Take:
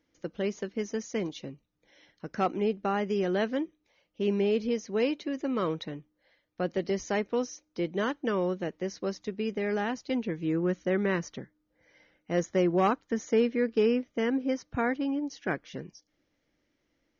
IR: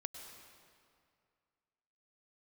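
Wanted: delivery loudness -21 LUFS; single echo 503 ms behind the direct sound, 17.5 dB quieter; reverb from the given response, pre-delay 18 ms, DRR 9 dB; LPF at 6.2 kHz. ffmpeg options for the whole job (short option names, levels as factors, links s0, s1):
-filter_complex "[0:a]lowpass=6200,aecho=1:1:503:0.133,asplit=2[s0][s1];[1:a]atrim=start_sample=2205,adelay=18[s2];[s1][s2]afir=irnorm=-1:irlink=0,volume=0.473[s3];[s0][s3]amix=inputs=2:normalize=0,volume=2.82"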